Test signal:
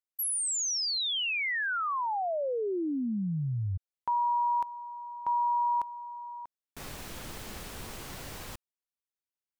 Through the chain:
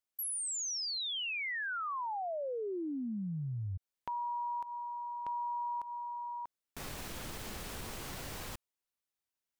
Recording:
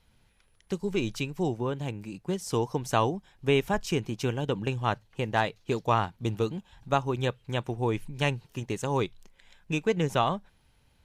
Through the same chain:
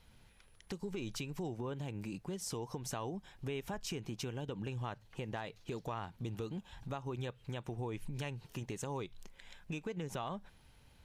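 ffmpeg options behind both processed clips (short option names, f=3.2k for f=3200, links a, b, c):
-af "acompressor=threshold=-38dB:ratio=6:attack=1.4:release=188:knee=6:detection=peak,volume=2dB"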